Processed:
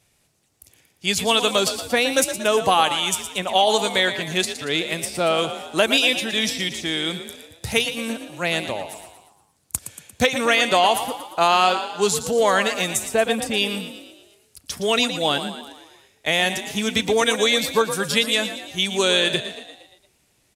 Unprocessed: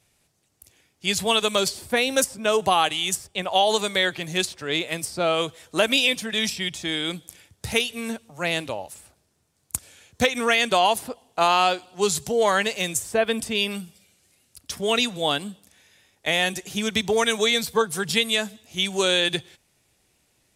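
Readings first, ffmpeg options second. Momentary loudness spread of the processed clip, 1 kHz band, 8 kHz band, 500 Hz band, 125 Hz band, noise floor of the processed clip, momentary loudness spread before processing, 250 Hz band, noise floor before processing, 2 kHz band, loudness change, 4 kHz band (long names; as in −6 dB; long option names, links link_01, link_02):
12 LU, +2.5 dB, +2.5 dB, +2.5 dB, +2.0 dB, −64 dBFS, 11 LU, +2.5 dB, −67 dBFS, +2.5 dB, +2.5 dB, +2.5 dB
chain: -filter_complex "[0:a]asplit=7[link_01][link_02][link_03][link_04][link_05][link_06][link_07];[link_02]adelay=116,afreqshift=39,volume=-10.5dB[link_08];[link_03]adelay=232,afreqshift=78,volume=-15.9dB[link_09];[link_04]adelay=348,afreqshift=117,volume=-21.2dB[link_10];[link_05]adelay=464,afreqshift=156,volume=-26.6dB[link_11];[link_06]adelay=580,afreqshift=195,volume=-31.9dB[link_12];[link_07]adelay=696,afreqshift=234,volume=-37.3dB[link_13];[link_01][link_08][link_09][link_10][link_11][link_12][link_13]amix=inputs=7:normalize=0,volume=2dB"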